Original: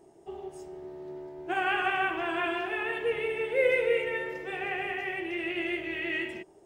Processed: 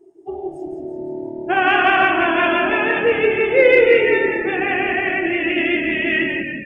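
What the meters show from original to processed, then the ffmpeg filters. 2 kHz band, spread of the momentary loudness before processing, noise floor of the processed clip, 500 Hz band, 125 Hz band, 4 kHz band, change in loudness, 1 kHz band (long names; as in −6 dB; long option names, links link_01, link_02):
+13.5 dB, 16 LU, −34 dBFS, +13.5 dB, +14.0 dB, +12.5 dB, +13.5 dB, +13.5 dB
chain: -filter_complex "[0:a]asplit=9[link_01][link_02][link_03][link_04][link_05][link_06][link_07][link_08][link_09];[link_02]adelay=171,afreqshift=-38,volume=-6dB[link_10];[link_03]adelay=342,afreqshift=-76,volume=-10.4dB[link_11];[link_04]adelay=513,afreqshift=-114,volume=-14.9dB[link_12];[link_05]adelay=684,afreqshift=-152,volume=-19.3dB[link_13];[link_06]adelay=855,afreqshift=-190,volume=-23.7dB[link_14];[link_07]adelay=1026,afreqshift=-228,volume=-28.2dB[link_15];[link_08]adelay=1197,afreqshift=-266,volume=-32.6dB[link_16];[link_09]adelay=1368,afreqshift=-304,volume=-37.1dB[link_17];[link_01][link_10][link_11][link_12][link_13][link_14][link_15][link_16][link_17]amix=inputs=9:normalize=0,afftdn=noise_reduction=21:noise_floor=-44,acontrast=75,volume=5.5dB"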